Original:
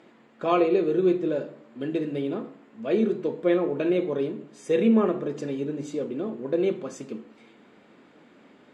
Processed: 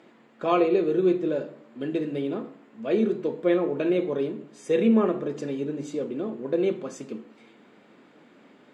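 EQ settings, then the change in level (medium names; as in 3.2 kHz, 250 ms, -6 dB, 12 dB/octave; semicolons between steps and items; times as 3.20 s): high-pass 100 Hz; 0.0 dB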